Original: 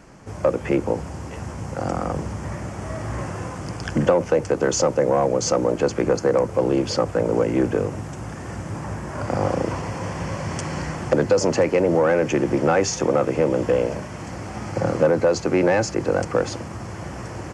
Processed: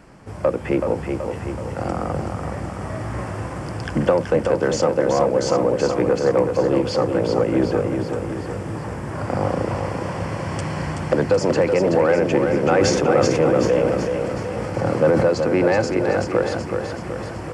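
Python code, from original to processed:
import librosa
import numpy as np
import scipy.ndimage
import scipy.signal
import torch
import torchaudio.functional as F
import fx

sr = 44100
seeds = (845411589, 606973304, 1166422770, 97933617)

y = fx.peak_eq(x, sr, hz=6400.0, db=-9.0, octaves=0.35)
y = fx.echo_feedback(y, sr, ms=377, feedback_pct=55, wet_db=-5.5)
y = fx.sustainer(y, sr, db_per_s=28.0, at=(12.71, 15.26))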